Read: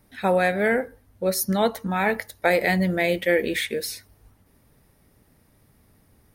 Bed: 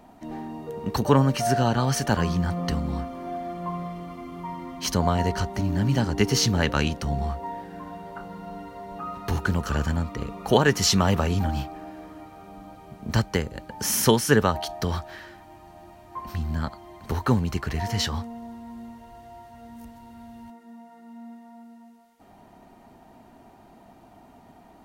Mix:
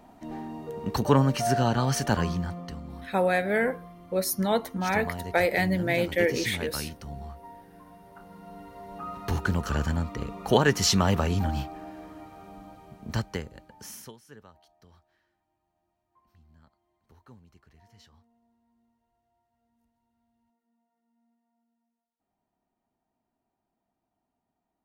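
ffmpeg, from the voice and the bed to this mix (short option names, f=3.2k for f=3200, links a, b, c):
-filter_complex "[0:a]adelay=2900,volume=-3.5dB[a];[1:a]volume=8.5dB,afade=t=out:st=2.17:d=0.5:silence=0.298538,afade=t=in:st=8.09:d=1.2:silence=0.298538,afade=t=out:st=12.46:d=1.67:silence=0.0354813[b];[a][b]amix=inputs=2:normalize=0"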